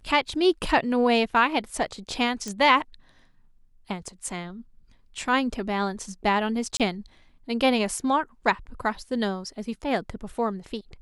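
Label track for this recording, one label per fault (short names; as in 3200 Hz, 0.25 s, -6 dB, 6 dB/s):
2.480000	2.480000	pop -19 dBFS
6.770000	6.800000	gap 27 ms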